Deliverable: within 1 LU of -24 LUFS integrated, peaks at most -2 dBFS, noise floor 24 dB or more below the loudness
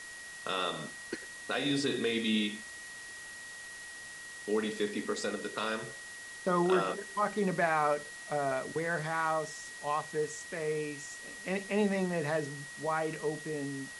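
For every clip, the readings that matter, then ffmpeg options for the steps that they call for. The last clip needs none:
steady tone 1.9 kHz; tone level -45 dBFS; noise floor -46 dBFS; noise floor target -58 dBFS; loudness -34.0 LUFS; peak level -15.0 dBFS; loudness target -24.0 LUFS
-> -af "bandreject=f=1900:w=30"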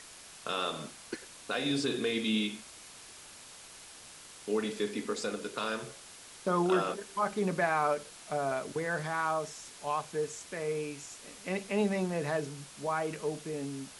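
steady tone not found; noise floor -51 dBFS; noise floor target -58 dBFS
-> -af "afftdn=nr=7:nf=-51"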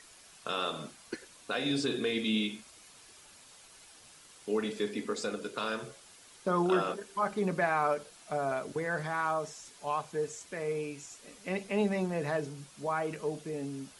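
noise floor -56 dBFS; noise floor target -58 dBFS
-> -af "afftdn=nr=6:nf=-56"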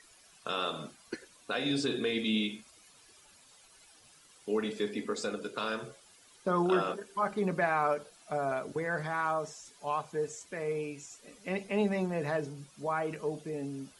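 noise floor -60 dBFS; loudness -33.5 LUFS; peak level -15.5 dBFS; loudness target -24.0 LUFS
-> -af "volume=2.99"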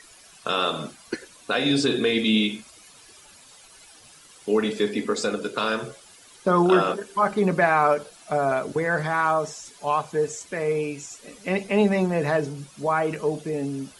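loudness -24.0 LUFS; peak level -6.0 dBFS; noise floor -51 dBFS

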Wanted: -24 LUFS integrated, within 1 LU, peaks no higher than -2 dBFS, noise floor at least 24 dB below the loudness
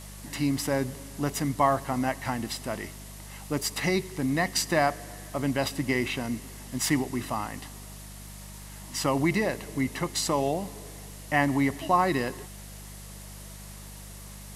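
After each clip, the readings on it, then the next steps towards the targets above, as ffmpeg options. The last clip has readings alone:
hum 50 Hz; highest harmonic 200 Hz; hum level -42 dBFS; noise floor -43 dBFS; noise floor target -52 dBFS; loudness -28.0 LUFS; peak level -9.0 dBFS; loudness target -24.0 LUFS
-> -af "bandreject=f=50:t=h:w=4,bandreject=f=100:t=h:w=4,bandreject=f=150:t=h:w=4,bandreject=f=200:t=h:w=4"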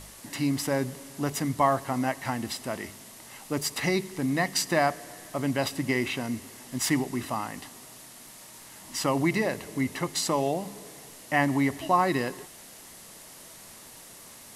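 hum not found; noise floor -48 dBFS; noise floor target -53 dBFS
-> -af "afftdn=nr=6:nf=-48"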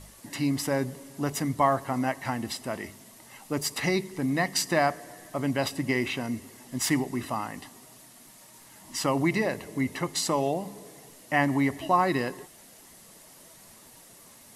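noise floor -52 dBFS; noise floor target -53 dBFS
-> -af "afftdn=nr=6:nf=-52"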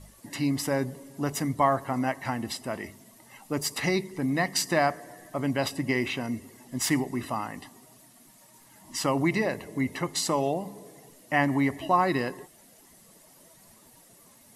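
noise floor -56 dBFS; loudness -28.5 LUFS; peak level -9.5 dBFS; loudness target -24.0 LUFS
-> -af "volume=1.68"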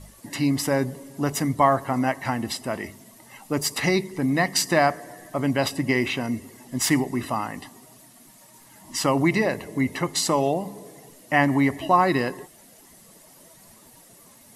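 loudness -24.0 LUFS; peak level -5.0 dBFS; noise floor -52 dBFS

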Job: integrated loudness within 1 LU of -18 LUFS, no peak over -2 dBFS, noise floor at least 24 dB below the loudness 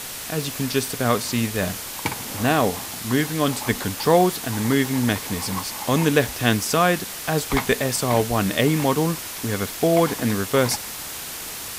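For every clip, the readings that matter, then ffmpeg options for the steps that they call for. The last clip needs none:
noise floor -33 dBFS; noise floor target -46 dBFS; loudness -22.0 LUFS; peak level -3.0 dBFS; loudness target -18.0 LUFS
-> -af "afftdn=nr=13:nf=-33"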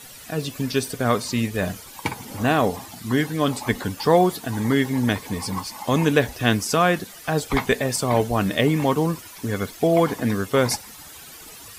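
noise floor -42 dBFS; noise floor target -47 dBFS
-> -af "afftdn=nr=6:nf=-42"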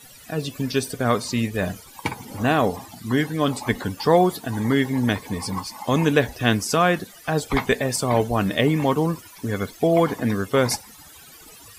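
noise floor -46 dBFS; noise floor target -47 dBFS
-> -af "afftdn=nr=6:nf=-46"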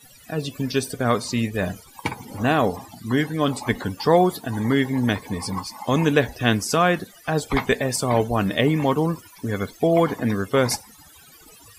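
noise floor -49 dBFS; loudness -22.5 LUFS; peak level -3.5 dBFS; loudness target -18.0 LUFS
-> -af "volume=1.68,alimiter=limit=0.794:level=0:latency=1"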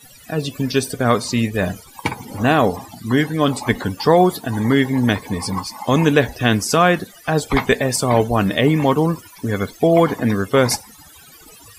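loudness -18.5 LUFS; peak level -2.0 dBFS; noise floor -45 dBFS

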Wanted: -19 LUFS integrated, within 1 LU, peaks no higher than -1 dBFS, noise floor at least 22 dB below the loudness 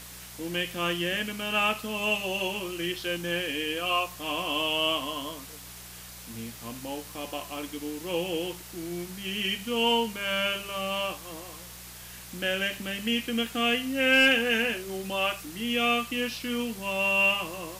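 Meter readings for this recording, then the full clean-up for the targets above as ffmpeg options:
hum 60 Hz; highest harmonic 180 Hz; hum level -49 dBFS; noise floor -45 dBFS; noise floor target -50 dBFS; loudness -27.5 LUFS; peak level -11.0 dBFS; loudness target -19.0 LUFS
-> -af "bandreject=f=60:t=h:w=4,bandreject=f=120:t=h:w=4,bandreject=f=180:t=h:w=4"
-af "afftdn=nr=6:nf=-45"
-af "volume=2.66"

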